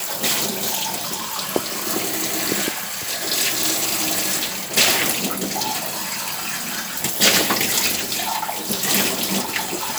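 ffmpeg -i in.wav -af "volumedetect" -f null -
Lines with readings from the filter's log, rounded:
mean_volume: -22.2 dB
max_volume: -1.2 dB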